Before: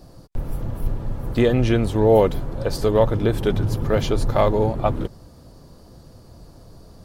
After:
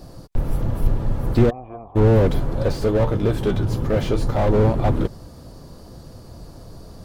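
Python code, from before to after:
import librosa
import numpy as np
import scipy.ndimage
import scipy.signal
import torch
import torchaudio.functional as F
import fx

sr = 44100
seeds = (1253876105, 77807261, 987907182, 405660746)

y = fx.self_delay(x, sr, depth_ms=0.069)
y = fx.formant_cascade(y, sr, vowel='a', at=(1.49, 1.95), fade=0.02)
y = fx.comb_fb(y, sr, f0_hz=64.0, decay_s=0.18, harmonics='all', damping=0.0, mix_pct=70, at=(2.72, 4.49))
y = fx.slew_limit(y, sr, full_power_hz=44.0)
y = F.gain(torch.from_numpy(y), 5.0).numpy()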